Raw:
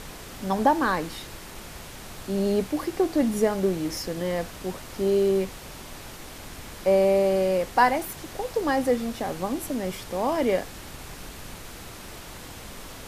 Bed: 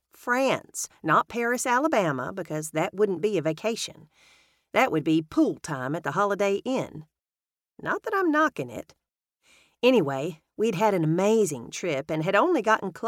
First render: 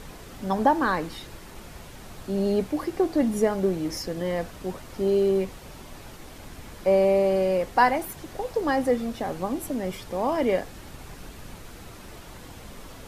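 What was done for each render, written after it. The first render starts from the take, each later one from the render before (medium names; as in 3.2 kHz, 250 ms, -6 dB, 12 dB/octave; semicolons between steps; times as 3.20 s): noise reduction 6 dB, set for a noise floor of -42 dBFS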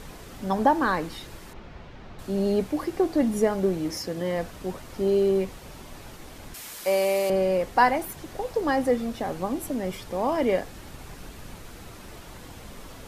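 1.53–2.19 s: distance through air 220 m; 3.90–4.37 s: high-pass 78 Hz; 6.54–7.30 s: tilt EQ +4 dB/octave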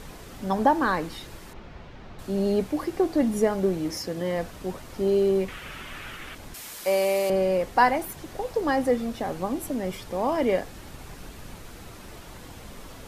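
5.48–6.35 s: high-order bell 2 kHz +12 dB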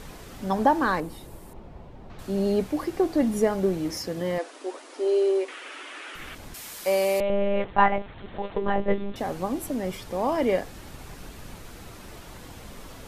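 1.00–2.10 s: high-order bell 2.9 kHz -10 dB 2.7 oct; 4.38–6.15 s: brick-wall FIR band-pass 260–11000 Hz; 7.20–9.16 s: monotone LPC vocoder at 8 kHz 200 Hz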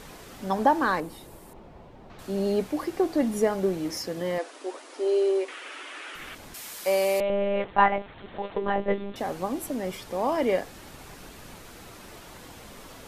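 bass shelf 150 Hz -8.5 dB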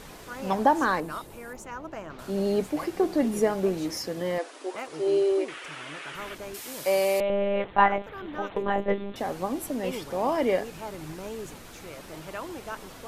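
add bed -16 dB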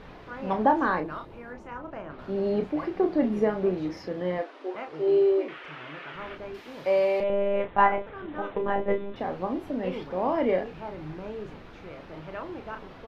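distance through air 310 m; doubling 33 ms -7 dB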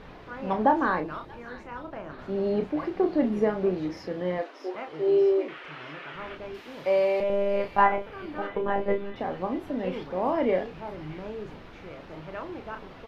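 feedback echo behind a high-pass 631 ms, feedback 50%, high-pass 3 kHz, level -6.5 dB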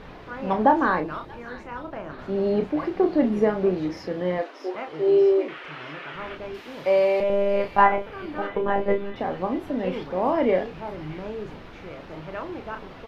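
trim +3.5 dB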